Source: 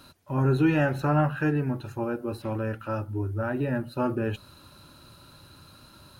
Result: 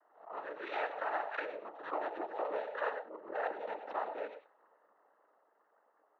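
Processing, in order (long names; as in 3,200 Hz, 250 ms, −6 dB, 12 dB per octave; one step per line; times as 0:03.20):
adaptive Wiener filter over 25 samples
source passing by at 0:02.47, 11 m/s, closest 3.9 metres
low-pass that shuts in the quiet parts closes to 1,200 Hz, open at −31 dBFS
downward compressor, threshold −41 dBFS, peak gain reduction 13.5 dB
single-sideband voice off tune +54 Hz 520–2,600 Hz
convolution reverb RT60 0.20 s, pre-delay 57 ms, DRR 9.5 dB
cochlear-implant simulation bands 12
background raised ahead of every attack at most 120 dB per second
level +13 dB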